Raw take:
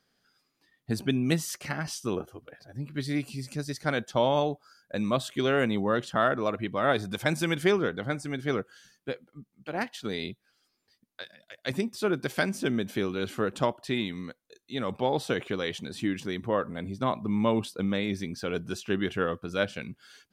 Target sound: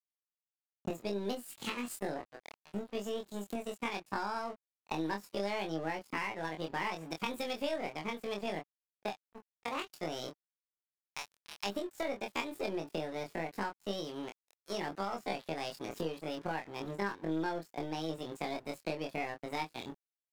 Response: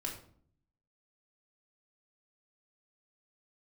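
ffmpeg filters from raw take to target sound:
-filter_complex "[0:a]highshelf=frequency=8800:gain=-6,bandreject=frequency=3900:width=5.2,acrossover=split=120|1500|2700[link_01][link_02][link_03][link_04];[link_01]acrusher=bits=6:mode=log:mix=0:aa=0.000001[link_05];[link_05][link_02][link_03][link_04]amix=inputs=4:normalize=0,aeval=exprs='sgn(val(0))*max(abs(val(0))-0.00891,0)':channel_layout=same,aeval=exprs='0.316*(cos(1*acos(clip(val(0)/0.316,-1,1)))-cos(1*PI/2))+0.0141*(cos(8*acos(clip(val(0)/0.316,-1,1)))-cos(8*PI/2))':channel_layout=same,asetrate=68011,aresample=44100,atempo=0.64842,acompressor=threshold=-41dB:ratio=6,asplit=2[link_06][link_07];[link_07]adelay=25,volume=-4.5dB[link_08];[link_06][link_08]amix=inputs=2:normalize=0,volume=5.5dB"

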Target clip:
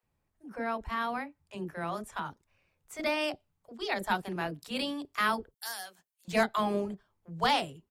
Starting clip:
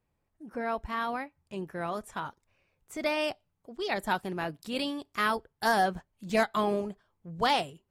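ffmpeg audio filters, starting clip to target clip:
ffmpeg -i in.wav -filter_complex "[0:a]asettb=1/sr,asplit=3[link_01][link_02][link_03];[link_01]atrim=end=5.514[link_04];[link_02]atrim=start=5.51:end=6.25,asetpts=PTS-STARTPTS,afade=type=in:duration=0.004:curve=qsin,afade=type=out:start_time=0.736:duration=0.004:curve=qsin,aderivative[link_05];[link_03]atrim=start=6.246[link_06];[link_04][link_05]acrossfade=duration=0.004:curve1=hsin:curve2=qsin[link_07];[link_07][link_06]acrossfade=duration=0.004:curve1=qsin:curve2=hsin,acrossover=split=480[link_08][link_09];[link_08]adelay=30[link_10];[link_10][link_09]amix=inputs=2:normalize=0" out.wav

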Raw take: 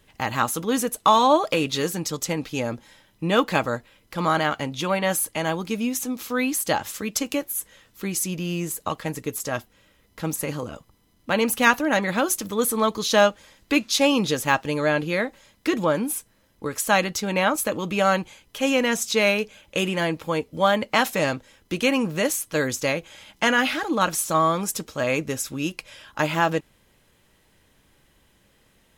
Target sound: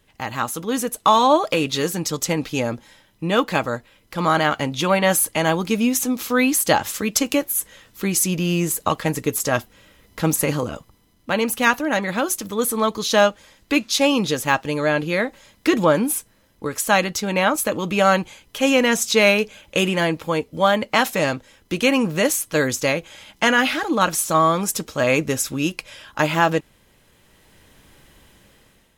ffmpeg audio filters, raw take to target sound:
ffmpeg -i in.wav -af "dynaudnorm=framelen=310:gausssize=5:maxgain=11.5dB,volume=-2dB" out.wav

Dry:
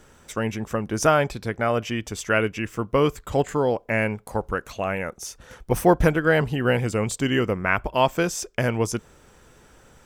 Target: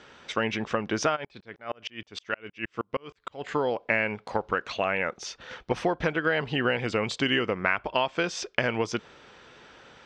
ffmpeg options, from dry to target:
ffmpeg -i in.wav -filter_complex "[0:a]highpass=frequency=290:poles=1,acompressor=threshold=-25dB:ratio=12,lowpass=frequency=4100:width=0.5412,lowpass=frequency=4100:width=1.3066,highshelf=frequency=2500:gain=10,asplit=3[link_01][link_02][link_03];[link_01]afade=type=out:start_time=1.15:duration=0.02[link_04];[link_02]aeval=exprs='val(0)*pow(10,-38*if(lt(mod(-6.4*n/s,1),2*abs(-6.4)/1000),1-mod(-6.4*n/s,1)/(2*abs(-6.4)/1000),(mod(-6.4*n/s,1)-2*abs(-6.4)/1000)/(1-2*abs(-6.4)/1000))/20)':channel_layout=same,afade=type=in:start_time=1.15:duration=0.02,afade=type=out:start_time=3.41:duration=0.02[link_05];[link_03]afade=type=in:start_time=3.41:duration=0.02[link_06];[link_04][link_05][link_06]amix=inputs=3:normalize=0,volume=2.5dB" out.wav

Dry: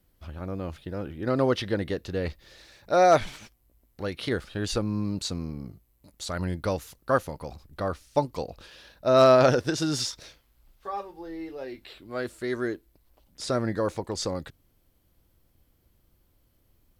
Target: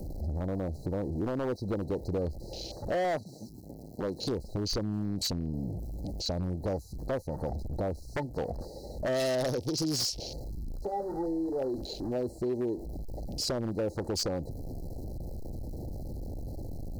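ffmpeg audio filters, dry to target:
ffmpeg -i in.wav -filter_complex "[0:a]aeval=exprs='val(0)+0.5*0.0141*sgn(val(0))':channel_layout=same,asplit=2[link_01][link_02];[link_02]acompressor=threshold=-37dB:ratio=12,volume=1dB[link_03];[link_01][link_03]amix=inputs=2:normalize=0,asettb=1/sr,asplit=3[link_04][link_05][link_06];[link_04]atrim=end=3.044[link_07];[link_05]atrim=start=3.04:end=4.18,asetpts=PTS-STARTPTS,afade=type=in:duration=0.004:curve=qsin,afade=type=out:start_time=1.136:duration=0.004:curve=qsin,highpass=140[link_08];[link_06]atrim=start=4.176[link_09];[link_07][link_08]acrossfade=duration=0.004:curve1=hsin:curve2=qsin[link_10];[link_10][link_09]acrossfade=duration=0.004:curve1=qsin:curve2=hsin,acrossover=split=630|2100|6800[link_11][link_12][link_13][link_14];[link_11]acompressor=threshold=-29dB:ratio=4[link_15];[link_12]acompressor=threshold=-37dB:ratio=4[link_16];[link_14]acompressor=threshold=-45dB:ratio=4[link_17];[link_15][link_16][link_13][link_17]amix=inputs=4:normalize=0,afftfilt=real='re*(1-between(b*sr/4096,920,3900))':imag='im*(1-between(b*sr/4096,920,3900))':win_size=4096:overlap=0.75,afwtdn=0.0112,aeval=exprs='0.0596*(abs(mod(val(0)/0.0596+3,4)-2)-1)':channel_layout=same" out.wav

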